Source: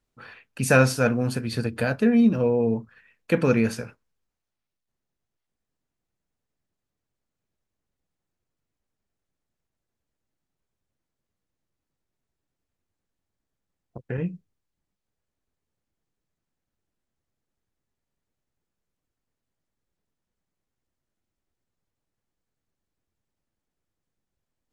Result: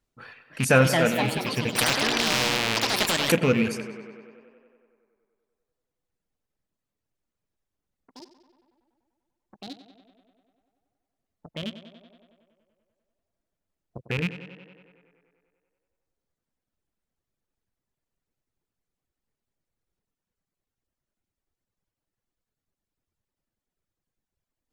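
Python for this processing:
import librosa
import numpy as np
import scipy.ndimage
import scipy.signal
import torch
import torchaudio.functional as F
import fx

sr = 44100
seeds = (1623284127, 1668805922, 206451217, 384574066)

p1 = fx.rattle_buzz(x, sr, strikes_db=-26.0, level_db=-17.0)
p2 = fx.dereverb_blind(p1, sr, rt60_s=1.8)
p3 = fx.echo_pitch(p2, sr, ms=369, semitones=4, count=3, db_per_echo=-6.0)
p4 = p3 + fx.echo_tape(p3, sr, ms=95, feedback_pct=79, wet_db=-11.5, lp_hz=4400.0, drive_db=6.0, wow_cents=34, dry=0)
y = fx.spectral_comp(p4, sr, ratio=4.0, at=(1.75, 3.32))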